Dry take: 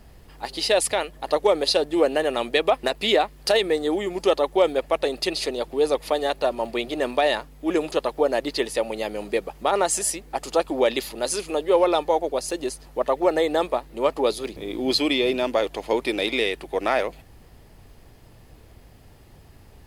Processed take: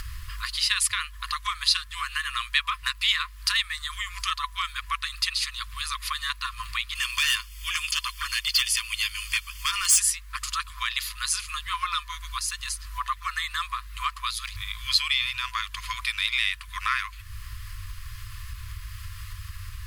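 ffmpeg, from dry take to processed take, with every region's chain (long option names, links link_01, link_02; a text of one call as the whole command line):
ffmpeg -i in.wav -filter_complex "[0:a]asettb=1/sr,asplit=3[link_01][link_02][link_03];[link_01]atrim=end=6.954[link_04];[link_02]atrim=start=6.95:end=10,asetpts=PTS-STARTPTS,afade=type=in:duration=0.004:curve=qsin,afade=type=out:start_time=3.046:duration=0.004:curve=qsin,highshelf=frequency=2100:width_type=q:width=1.5:gain=9,asoftclip=type=hard:threshold=-16dB,asuperstop=centerf=3900:order=20:qfactor=7.6[link_05];[link_03]atrim=start=9.996[link_06];[link_04][link_05]acrossfade=duration=0.004:curve1=hsin:curve2=qsin[link_07];[link_07][link_06]acrossfade=duration=0.004:curve1=qsin:curve2=hsin,afftfilt=real='re*(1-between(b*sr/4096,110,1000))':imag='im*(1-between(b*sr/4096,110,1000))':win_size=4096:overlap=0.75,acompressor=mode=upward:threshold=-26dB:ratio=2.5,volume=1.5dB" out.wav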